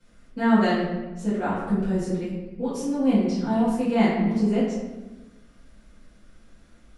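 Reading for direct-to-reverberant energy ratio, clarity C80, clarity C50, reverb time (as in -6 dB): -13.0 dB, 3.0 dB, 0.5 dB, 1.1 s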